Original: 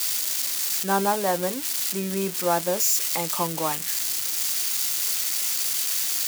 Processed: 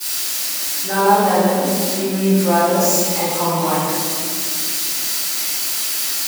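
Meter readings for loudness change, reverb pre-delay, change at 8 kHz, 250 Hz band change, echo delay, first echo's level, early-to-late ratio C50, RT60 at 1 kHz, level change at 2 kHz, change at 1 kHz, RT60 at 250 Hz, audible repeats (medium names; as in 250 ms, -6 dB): +6.0 dB, 4 ms, +4.0 dB, +12.0 dB, no echo, no echo, -3.0 dB, 1.9 s, +7.5 dB, +9.5 dB, 4.1 s, no echo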